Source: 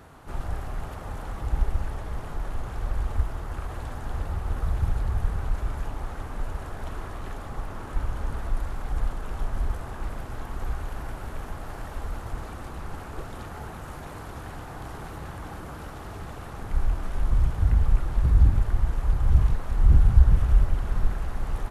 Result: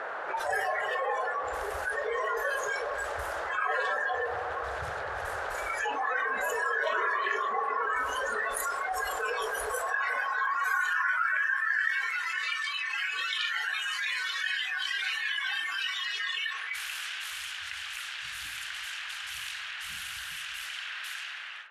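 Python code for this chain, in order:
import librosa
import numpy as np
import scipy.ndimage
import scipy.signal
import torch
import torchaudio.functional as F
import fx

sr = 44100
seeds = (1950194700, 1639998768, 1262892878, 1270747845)

y = fx.fade_out_tail(x, sr, length_s=1.74)
y = fx.rider(y, sr, range_db=5, speed_s=0.5)
y = fx.noise_reduce_blind(y, sr, reduce_db=21)
y = fx.graphic_eq_15(y, sr, hz=(100, 250, 1600), db=(-6, -6, 11))
y = fx.env_lowpass(y, sr, base_hz=2300.0, full_db=-20.0)
y = fx.high_shelf(y, sr, hz=2900.0, db=10.5)
y = fx.echo_wet_lowpass(y, sr, ms=88, feedback_pct=72, hz=950.0, wet_db=-10.5)
y = fx.filter_sweep_highpass(y, sr, from_hz=540.0, to_hz=2800.0, start_s=9.57, end_s=12.51, q=2.9)
y = fx.env_flatten(y, sr, amount_pct=70)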